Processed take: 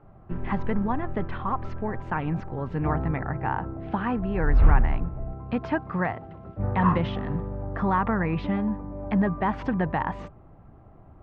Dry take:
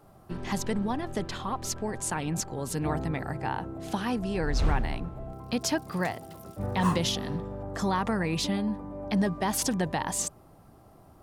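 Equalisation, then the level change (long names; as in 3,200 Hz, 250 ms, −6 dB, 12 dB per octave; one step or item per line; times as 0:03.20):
low-shelf EQ 120 Hz +10.5 dB
dynamic equaliser 1,200 Hz, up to +6 dB, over −43 dBFS, Q 1.2
low-pass filter 2,400 Hz 24 dB per octave
0.0 dB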